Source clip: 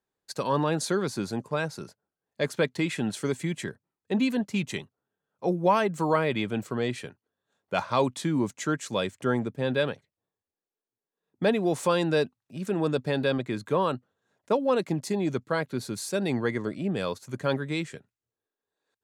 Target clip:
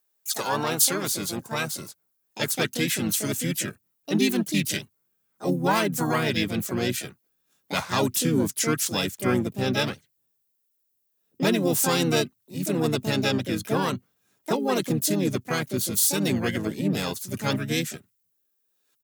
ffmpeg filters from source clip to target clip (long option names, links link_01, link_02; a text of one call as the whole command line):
ffmpeg -i in.wav -filter_complex "[0:a]asubboost=boost=6:cutoff=240,asplit=3[link_01][link_02][link_03];[link_02]asetrate=35002,aresample=44100,atempo=1.25992,volume=-5dB[link_04];[link_03]asetrate=66075,aresample=44100,atempo=0.66742,volume=-7dB[link_05];[link_01][link_04][link_05]amix=inputs=3:normalize=0,aemphasis=mode=production:type=riaa" out.wav